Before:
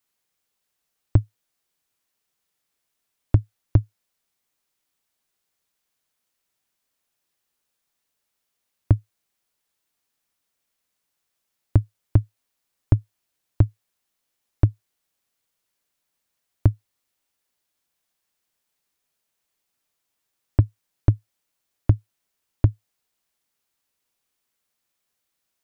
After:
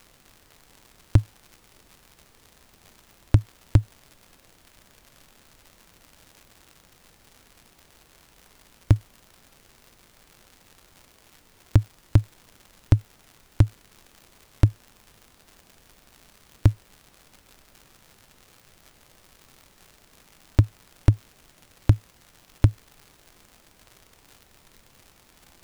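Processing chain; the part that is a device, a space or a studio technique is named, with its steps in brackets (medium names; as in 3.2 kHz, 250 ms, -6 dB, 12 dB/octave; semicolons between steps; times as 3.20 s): record under a worn stylus (tracing distortion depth 0.25 ms; crackle 140 per s -37 dBFS; pink noise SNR 29 dB)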